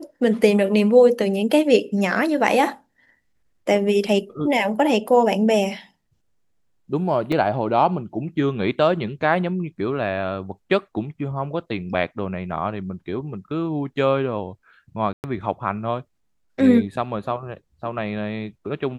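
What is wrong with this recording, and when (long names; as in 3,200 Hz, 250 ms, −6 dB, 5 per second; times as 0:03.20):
0:07.32: drop-out 4 ms
0:15.13–0:15.24: drop-out 109 ms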